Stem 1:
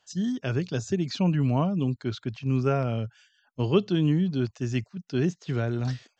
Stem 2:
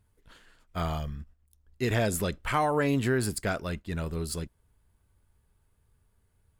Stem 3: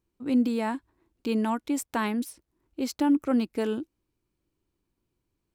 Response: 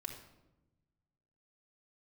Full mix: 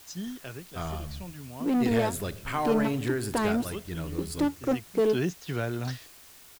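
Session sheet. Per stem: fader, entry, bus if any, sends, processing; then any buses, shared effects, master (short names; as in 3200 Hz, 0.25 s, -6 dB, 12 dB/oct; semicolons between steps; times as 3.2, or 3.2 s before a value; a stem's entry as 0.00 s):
+2.0 dB, 0.00 s, no send, low shelf 400 Hz -8 dB; auto duck -15 dB, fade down 0.75 s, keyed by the second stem
-6.0 dB, 0.00 s, send -6 dB, requantised 8-bit, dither triangular
-9.5 dB, 1.40 s, no send, sample leveller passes 3; bell 430 Hz +9 dB 1.2 oct; ending taper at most 430 dB/s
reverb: on, RT60 1.0 s, pre-delay 3 ms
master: dry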